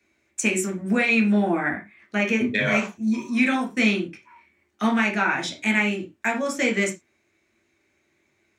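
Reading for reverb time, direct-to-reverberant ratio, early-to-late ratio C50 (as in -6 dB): not exponential, 0.5 dB, 11.0 dB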